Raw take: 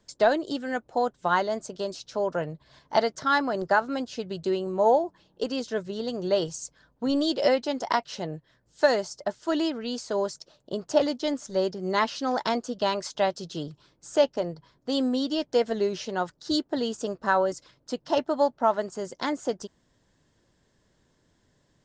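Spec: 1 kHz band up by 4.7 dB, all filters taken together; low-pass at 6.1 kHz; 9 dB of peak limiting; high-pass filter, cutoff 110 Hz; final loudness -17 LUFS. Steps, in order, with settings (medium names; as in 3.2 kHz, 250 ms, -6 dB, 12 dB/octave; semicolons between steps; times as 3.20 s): high-pass 110 Hz; low-pass 6.1 kHz; peaking EQ 1 kHz +6 dB; trim +11 dB; peak limiter -3 dBFS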